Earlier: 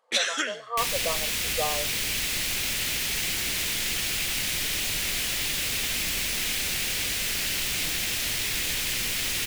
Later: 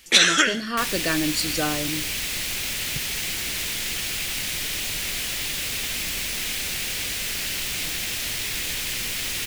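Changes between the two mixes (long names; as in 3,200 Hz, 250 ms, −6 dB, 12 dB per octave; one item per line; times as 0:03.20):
speech: remove linear-phase brick-wall band-pass 440–1,300 Hz
first sound +9.5 dB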